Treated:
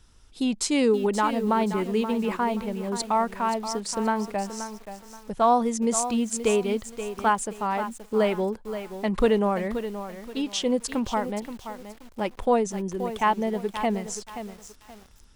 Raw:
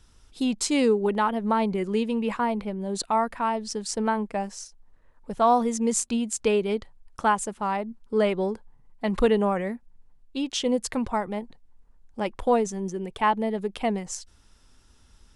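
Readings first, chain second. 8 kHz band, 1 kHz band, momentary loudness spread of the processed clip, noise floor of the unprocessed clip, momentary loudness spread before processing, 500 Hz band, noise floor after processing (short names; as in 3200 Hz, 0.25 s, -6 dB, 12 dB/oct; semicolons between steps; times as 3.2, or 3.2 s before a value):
+0.5 dB, +0.5 dB, 14 LU, -57 dBFS, 11 LU, +0.5 dB, -52 dBFS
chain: lo-fi delay 0.527 s, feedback 35%, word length 7-bit, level -10 dB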